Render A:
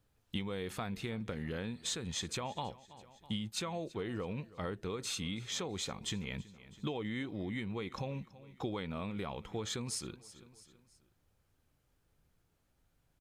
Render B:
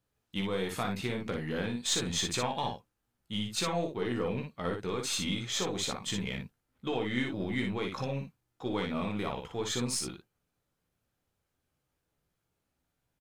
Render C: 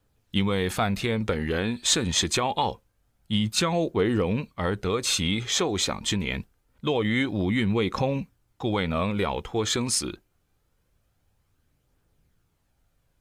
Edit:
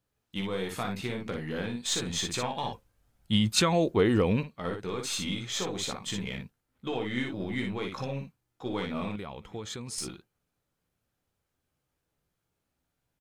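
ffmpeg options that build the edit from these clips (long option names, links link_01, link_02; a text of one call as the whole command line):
ffmpeg -i take0.wav -i take1.wav -i take2.wav -filter_complex "[1:a]asplit=3[link_01][link_02][link_03];[link_01]atrim=end=2.732[link_04];[2:a]atrim=start=2.728:end=4.432[link_05];[link_02]atrim=start=4.428:end=9.162[link_06];[0:a]atrim=start=9.158:end=9.982[link_07];[link_03]atrim=start=9.978[link_08];[link_04][link_05]acrossfade=duration=0.004:curve1=hsin:curve2=hsin[link_09];[link_09][link_06]acrossfade=duration=0.004:curve1=hsin:curve2=hsin[link_10];[link_10][link_07]acrossfade=duration=0.004:curve1=hsin:curve2=hsin[link_11];[link_11][link_08]acrossfade=duration=0.004:curve1=hsin:curve2=hsin" out.wav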